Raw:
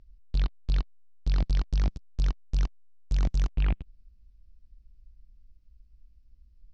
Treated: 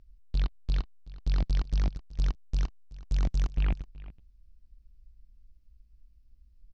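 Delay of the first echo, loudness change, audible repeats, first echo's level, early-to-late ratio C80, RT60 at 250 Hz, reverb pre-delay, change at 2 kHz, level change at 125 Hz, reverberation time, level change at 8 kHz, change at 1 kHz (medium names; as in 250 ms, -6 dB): 377 ms, -1.5 dB, 1, -18.5 dB, no reverb, no reverb, no reverb, -1.5 dB, -1.5 dB, no reverb, no reading, -1.5 dB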